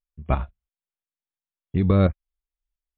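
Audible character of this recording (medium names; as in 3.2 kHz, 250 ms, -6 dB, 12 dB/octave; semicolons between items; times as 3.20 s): tremolo saw up 2.9 Hz, depth 55%; MP3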